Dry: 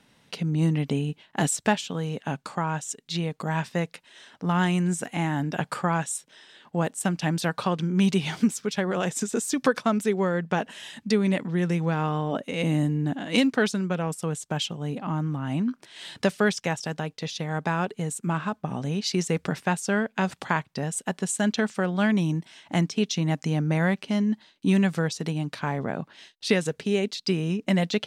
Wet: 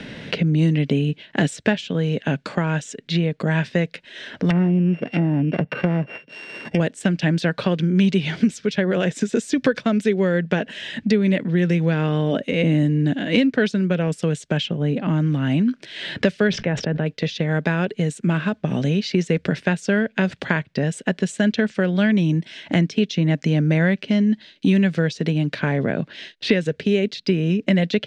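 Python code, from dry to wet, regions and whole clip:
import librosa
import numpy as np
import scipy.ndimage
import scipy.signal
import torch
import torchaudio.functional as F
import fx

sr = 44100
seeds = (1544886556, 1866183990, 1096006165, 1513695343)

y = fx.chain(x, sr, fx.sample_sort(block=16),
    fx.highpass(hz=56.0, slope=12),
    fx.env_lowpass_down(base_hz=780.0, full_db=-23.5), at=(4.5, 6.8))
y = fx.chain(y, sr, fx.spacing_loss(db_at_10k=28),
    fx.sustainer(db_per_s=40.0), at=(16.47, 17.06))
y = scipy.signal.sosfilt(scipy.signal.butter(2, 3800.0, 'lowpass', fs=sr, output='sos'), y)
y = fx.band_shelf(y, sr, hz=980.0, db=-10.5, octaves=1.0)
y = fx.band_squash(y, sr, depth_pct=70)
y = y * librosa.db_to_amplitude(6.0)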